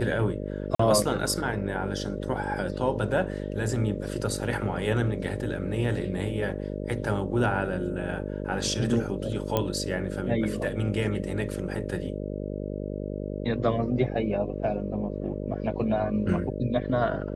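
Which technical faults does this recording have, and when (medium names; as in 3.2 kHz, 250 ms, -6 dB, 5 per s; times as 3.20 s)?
buzz 50 Hz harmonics 12 -33 dBFS
0.75–0.79 s: dropout 44 ms
9.57 s: pop -11 dBFS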